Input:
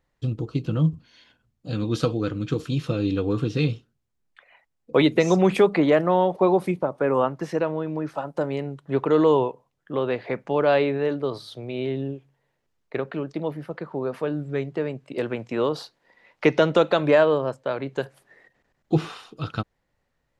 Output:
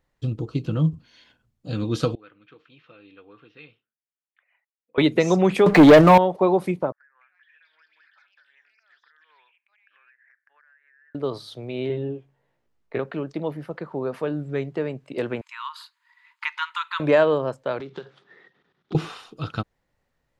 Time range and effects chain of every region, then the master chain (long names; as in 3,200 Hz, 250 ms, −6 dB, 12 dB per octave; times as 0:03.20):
0:02.15–0:04.98: low-pass filter 2,400 Hz 24 dB per octave + first difference
0:05.66–0:06.18: comb filter 6.7 ms, depth 55% + leveller curve on the samples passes 3
0:06.92–0:11.15: flat-topped band-pass 1,700 Hz, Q 5.5 + downward compressor 20 to 1, threshold −55 dBFS + delay with pitch and tempo change per echo 234 ms, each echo +6 semitones, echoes 3, each echo −6 dB
0:11.88–0:12.99: high-shelf EQ 3,600 Hz −8.5 dB + double-tracking delay 17 ms −3.5 dB
0:15.41–0:17.00: notch filter 5,700 Hz, Q 5.9 + dynamic equaliser 5,900 Hz, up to −7 dB, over −47 dBFS, Q 1.1 + linear-phase brick-wall high-pass 890 Hz
0:17.80–0:18.95: one scale factor per block 5 bits + downward compressor 16 to 1, threshold −34 dBFS + loudspeaker in its box 130–5,100 Hz, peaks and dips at 170 Hz +8 dB, 390 Hz +8 dB, 610 Hz −6 dB, 1,300 Hz +8 dB, 3,500 Hz +10 dB
whole clip: no processing